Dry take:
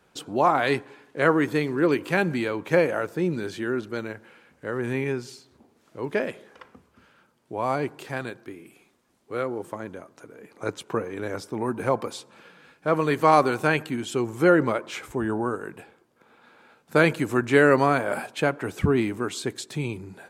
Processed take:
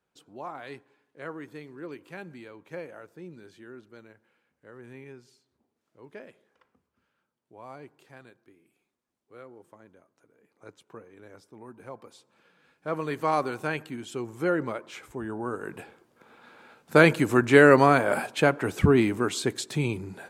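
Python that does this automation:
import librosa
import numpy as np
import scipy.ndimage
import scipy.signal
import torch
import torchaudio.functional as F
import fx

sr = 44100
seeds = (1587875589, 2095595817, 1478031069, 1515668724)

y = fx.gain(x, sr, db=fx.line((11.96, -18.5), (12.92, -8.0), (15.36, -8.0), (15.77, 2.0)))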